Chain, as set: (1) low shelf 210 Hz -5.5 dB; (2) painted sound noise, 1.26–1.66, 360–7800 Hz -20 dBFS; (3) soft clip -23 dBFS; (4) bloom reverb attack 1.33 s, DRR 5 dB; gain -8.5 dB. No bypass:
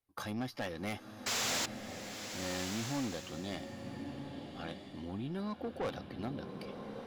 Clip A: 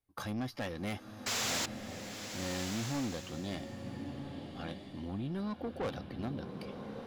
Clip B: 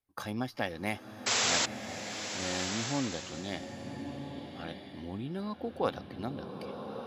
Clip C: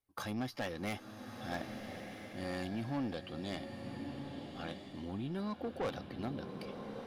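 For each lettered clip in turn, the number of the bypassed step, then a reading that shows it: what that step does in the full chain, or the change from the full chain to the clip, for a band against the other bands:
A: 1, 125 Hz band +3.0 dB; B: 3, distortion -8 dB; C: 2, 8 kHz band -16.5 dB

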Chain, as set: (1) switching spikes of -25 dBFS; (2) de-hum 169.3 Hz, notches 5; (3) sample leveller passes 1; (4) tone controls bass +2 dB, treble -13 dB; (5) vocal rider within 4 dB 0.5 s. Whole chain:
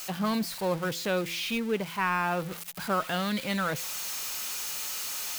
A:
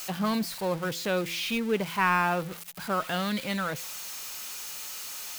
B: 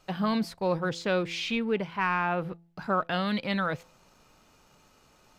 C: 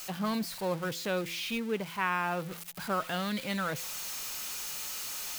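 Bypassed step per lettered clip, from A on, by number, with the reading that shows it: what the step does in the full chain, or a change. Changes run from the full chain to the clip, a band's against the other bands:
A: 5, crest factor change +3.0 dB; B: 1, 8 kHz band -17.0 dB; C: 3, crest factor change +3.0 dB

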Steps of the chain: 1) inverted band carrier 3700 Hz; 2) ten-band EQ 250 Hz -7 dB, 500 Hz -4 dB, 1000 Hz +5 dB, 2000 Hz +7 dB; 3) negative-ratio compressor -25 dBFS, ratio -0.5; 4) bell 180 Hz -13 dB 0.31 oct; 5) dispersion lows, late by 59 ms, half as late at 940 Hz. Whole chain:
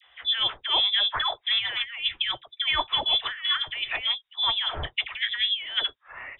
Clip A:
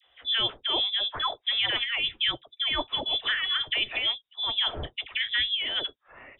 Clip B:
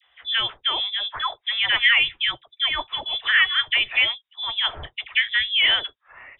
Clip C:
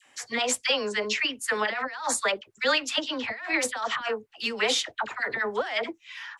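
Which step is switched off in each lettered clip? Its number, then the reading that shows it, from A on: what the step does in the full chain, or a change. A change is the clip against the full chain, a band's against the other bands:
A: 2, loudness change -1.5 LU; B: 3, crest factor change +1.5 dB; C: 1, 4 kHz band -16.0 dB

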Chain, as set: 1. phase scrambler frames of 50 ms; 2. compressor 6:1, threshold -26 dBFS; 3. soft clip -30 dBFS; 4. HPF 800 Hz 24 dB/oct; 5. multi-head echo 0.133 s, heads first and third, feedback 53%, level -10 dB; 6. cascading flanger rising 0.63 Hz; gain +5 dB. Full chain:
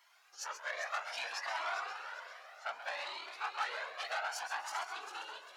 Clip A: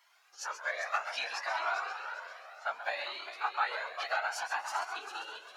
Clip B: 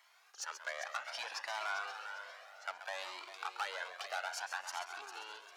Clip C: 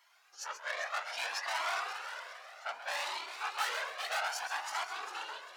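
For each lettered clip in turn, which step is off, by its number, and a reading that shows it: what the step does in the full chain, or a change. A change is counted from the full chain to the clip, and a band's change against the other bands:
3, distortion -9 dB; 1, 8 kHz band +2.0 dB; 2, momentary loudness spread change +1 LU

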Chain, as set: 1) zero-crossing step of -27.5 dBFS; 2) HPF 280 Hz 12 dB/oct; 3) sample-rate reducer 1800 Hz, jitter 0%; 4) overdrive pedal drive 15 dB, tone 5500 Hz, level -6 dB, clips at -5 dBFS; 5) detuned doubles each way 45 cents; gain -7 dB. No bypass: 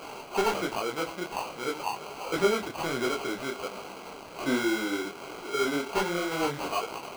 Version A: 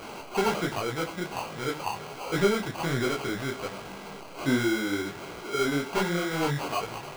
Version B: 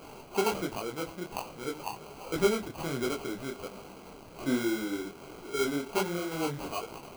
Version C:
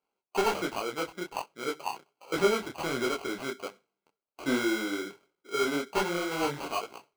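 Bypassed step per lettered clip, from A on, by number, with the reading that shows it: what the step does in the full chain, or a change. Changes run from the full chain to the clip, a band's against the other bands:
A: 2, 125 Hz band +9.5 dB; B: 4, crest factor change +1.5 dB; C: 1, distortion -15 dB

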